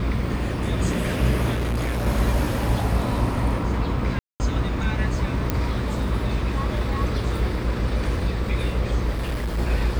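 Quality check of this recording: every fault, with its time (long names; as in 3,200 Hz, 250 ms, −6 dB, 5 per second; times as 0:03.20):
mains hum 60 Hz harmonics 8 −27 dBFS
0:01.52–0:02.07: clipping −21 dBFS
0:04.19–0:04.40: drop-out 209 ms
0:05.50: click −8 dBFS
0:09.12–0:09.59: clipping −22 dBFS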